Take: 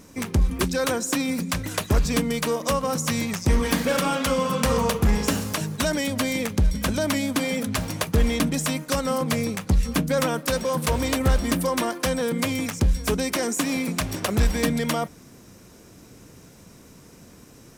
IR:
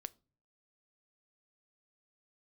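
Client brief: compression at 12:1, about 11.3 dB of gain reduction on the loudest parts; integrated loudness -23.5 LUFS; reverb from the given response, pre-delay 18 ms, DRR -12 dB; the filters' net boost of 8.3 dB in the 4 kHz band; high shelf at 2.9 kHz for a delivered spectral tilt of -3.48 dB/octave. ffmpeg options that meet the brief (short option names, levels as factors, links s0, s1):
-filter_complex "[0:a]highshelf=f=2900:g=7.5,equalizer=f=4000:t=o:g=4.5,acompressor=threshold=0.0501:ratio=12,asplit=2[s0][s1];[1:a]atrim=start_sample=2205,adelay=18[s2];[s1][s2]afir=irnorm=-1:irlink=0,volume=6.68[s3];[s0][s3]amix=inputs=2:normalize=0,volume=0.473"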